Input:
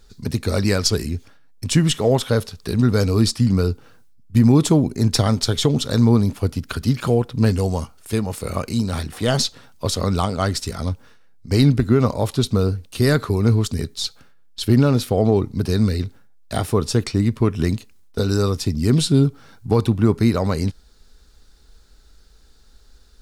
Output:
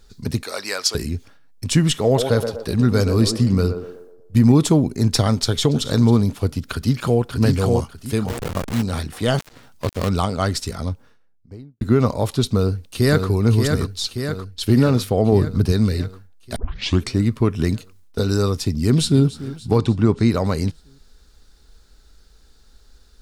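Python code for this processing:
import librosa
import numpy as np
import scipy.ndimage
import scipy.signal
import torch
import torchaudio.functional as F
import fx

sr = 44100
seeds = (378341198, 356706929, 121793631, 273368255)

y = fx.highpass(x, sr, hz=720.0, slope=12, at=(0.43, 0.95))
y = fx.echo_banded(y, sr, ms=121, feedback_pct=52, hz=570.0, wet_db=-5.5, at=(2.05, 4.52))
y = fx.echo_throw(y, sr, start_s=5.44, length_s=0.44, ms=270, feedback_pct=35, wet_db=-15.0)
y = fx.echo_throw(y, sr, start_s=6.71, length_s=0.5, ms=590, feedback_pct=25, wet_db=-2.0)
y = fx.delta_hold(y, sr, step_db=-22.0, at=(8.27, 8.81), fade=0.02)
y = fx.dead_time(y, sr, dead_ms=0.23, at=(9.37, 10.09))
y = fx.studio_fade_out(y, sr, start_s=10.59, length_s=1.22)
y = fx.echo_throw(y, sr, start_s=12.54, length_s=0.74, ms=580, feedback_pct=65, wet_db=-5.0)
y = fx.low_shelf(y, sr, hz=170.0, db=7.0, at=(15.32, 15.72))
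y = fx.echo_throw(y, sr, start_s=18.72, length_s=0.52, ms=290, feedback_pct=60, wet_db=-16.0)
y = fx.lowpass(y, sr, hz=8200.0, slope=24, at=(19.78, 20.31))
y = fx.edit(y, sr, fx.tape_start(start_s=16.56, length_s=0.51), tone=tone)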